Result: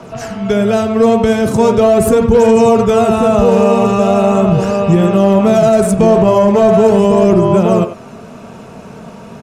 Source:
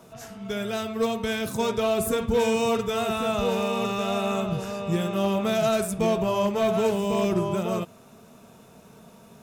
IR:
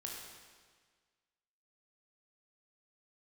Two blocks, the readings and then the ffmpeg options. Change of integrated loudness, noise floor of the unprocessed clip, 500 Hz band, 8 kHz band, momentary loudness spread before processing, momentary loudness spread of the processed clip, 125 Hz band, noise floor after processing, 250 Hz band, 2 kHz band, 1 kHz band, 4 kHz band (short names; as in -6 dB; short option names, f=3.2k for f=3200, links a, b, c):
+15.0 dB, -51 dBFS, +15.5 dB, +9.0 dB, 7 LU, 4 LU, +16.0 dB, -34 dBFS, +16.0 dB, +8.0 dB, +13.5 dB, +4.5 dB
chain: -filter_complex "[0:a]bandreject=f=3.6k:w=11,acrossover=split=350|1000|6000[a][b][c][d];[c]acompressor=threshold=-44dB:ratio=6[e];[d]aphaser=in_gain=1:out_gain=1:delay=1.9:decay=0.69:speed=0.4:type=triangular[f];[a][b][e][f]amix=inputs=4:normalize=0,adynamicsmooth=sensitivity=2:basefreq=5.3k,asplit=2[g][h];[h]adelay=90,highpass=300,lowpass=3.4k,asoftclip=type=hard:threshold=-21dB,volume=-10dB[i];[g][i]amix=inputs=2:normalize=0,asoftclip=type=tanh:threshold=-13dB,alimiter=level_in=19dB:limit=-1dB:release=50:level=0:latency=1,volume=-1dB"